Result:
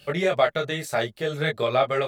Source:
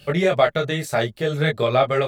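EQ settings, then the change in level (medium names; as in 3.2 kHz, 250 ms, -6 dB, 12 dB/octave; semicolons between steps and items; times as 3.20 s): bass shelf 240 Hz -7 dB; -2.5 dB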